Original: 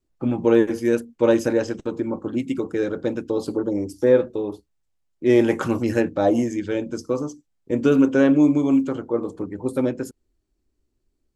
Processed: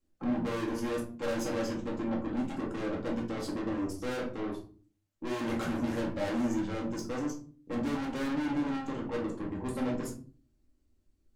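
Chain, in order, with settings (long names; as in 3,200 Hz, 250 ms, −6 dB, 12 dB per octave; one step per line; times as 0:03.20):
tube saturation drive 32 dB, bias 0.3
rectangular room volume 270 cubic metres, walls furnished, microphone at 2.2 metres
level −4 dB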